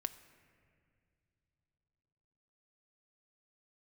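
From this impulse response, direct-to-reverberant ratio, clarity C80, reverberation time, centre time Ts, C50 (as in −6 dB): 9.0 dB, 15.0 dB, non-exponential decay, 9 ms, 14.0 dB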